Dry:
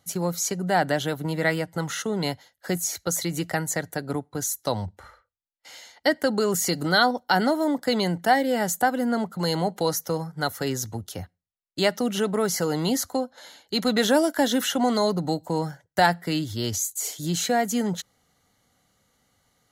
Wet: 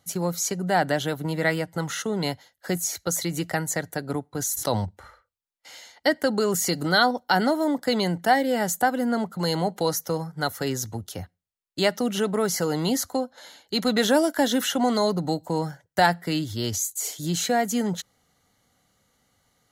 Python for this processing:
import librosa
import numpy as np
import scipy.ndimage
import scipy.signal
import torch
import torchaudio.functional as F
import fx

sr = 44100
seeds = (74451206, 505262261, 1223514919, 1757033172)

y = fx.sustainer(x, sr, db_per_s=28.0, at=(4.37, 4.85))